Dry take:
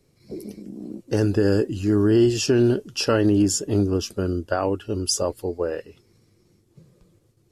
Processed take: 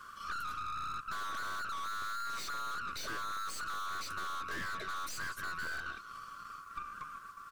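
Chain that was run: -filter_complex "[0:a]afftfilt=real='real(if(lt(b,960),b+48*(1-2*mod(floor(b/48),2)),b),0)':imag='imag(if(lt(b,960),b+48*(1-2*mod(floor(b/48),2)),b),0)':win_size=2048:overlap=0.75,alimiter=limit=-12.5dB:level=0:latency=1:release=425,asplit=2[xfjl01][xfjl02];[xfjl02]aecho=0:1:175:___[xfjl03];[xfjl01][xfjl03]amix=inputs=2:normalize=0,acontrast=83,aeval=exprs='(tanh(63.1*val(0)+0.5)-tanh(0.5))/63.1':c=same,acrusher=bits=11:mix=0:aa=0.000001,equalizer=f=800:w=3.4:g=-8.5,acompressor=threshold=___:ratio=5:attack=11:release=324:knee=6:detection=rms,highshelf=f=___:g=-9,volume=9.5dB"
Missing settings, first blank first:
0.0708, -45dB, 3600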